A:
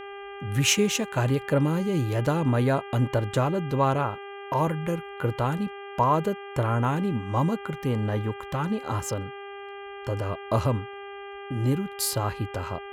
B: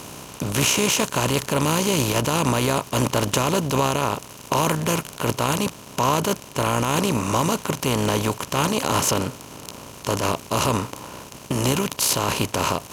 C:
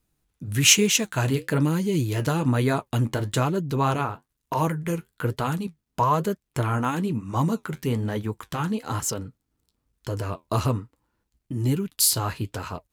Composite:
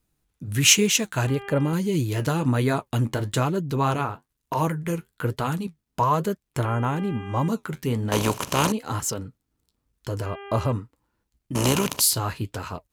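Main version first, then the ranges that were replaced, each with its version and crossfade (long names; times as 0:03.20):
C
0:01.27–0:01.73: punch in from A
0:06.65–0:07.48: punch in from A
0:08.12–0:08.72: punch in from B
0:10.26–0:10.72: punch in from A
0:11.55–0:12.01: punch in from B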